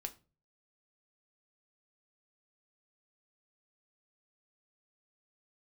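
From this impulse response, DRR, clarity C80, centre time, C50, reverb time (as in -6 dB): 4.5 dB, 23.5 dB, 6 ms, 17.5 dB, 0.35 s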